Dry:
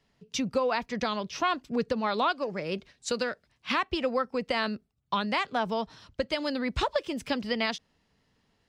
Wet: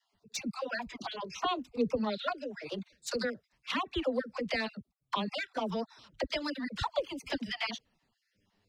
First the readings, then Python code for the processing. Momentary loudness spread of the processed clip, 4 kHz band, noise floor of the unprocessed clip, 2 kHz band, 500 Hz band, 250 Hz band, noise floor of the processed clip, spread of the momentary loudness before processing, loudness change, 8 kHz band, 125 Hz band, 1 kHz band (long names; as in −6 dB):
8 LU, −4.0 dB, −72 dBFS, −5.0 dB, −5.0 dB, −4.5 dB, −81 dBFS, 7 LU, −5.5 dB, −3.5 dB, −4.0 dB, −7.0 dB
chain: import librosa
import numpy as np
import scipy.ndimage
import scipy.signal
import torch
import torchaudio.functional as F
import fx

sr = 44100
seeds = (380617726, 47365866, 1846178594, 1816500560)

y = fx.spec_dropout(x, sr, seeds[0], share_pct=30)
y = fx.env_flanger(y, sr, rest_ms=10.3, full_db=-24.0)
y = fx.dispersion(y, sr, late='lows', ms=49.0, hz=440.0)